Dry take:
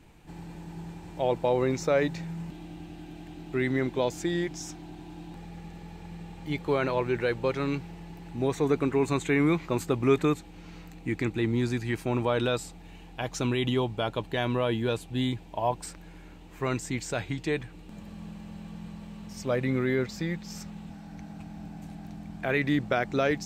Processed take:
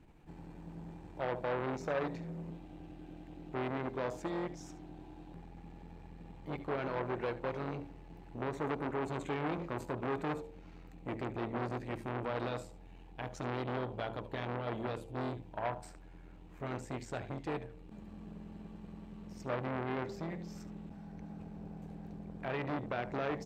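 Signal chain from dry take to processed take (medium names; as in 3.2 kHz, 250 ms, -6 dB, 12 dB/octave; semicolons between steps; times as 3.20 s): treble shelf 2.2 kHz -11.5 dB; de-hum 56.64 Hz, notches 18; peak limiter -19 dBFS, peak gain reduction 6.5 dB; delay 73 ms -15 dB; transformer saturation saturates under 1.1 kHz; trim -3.5 dB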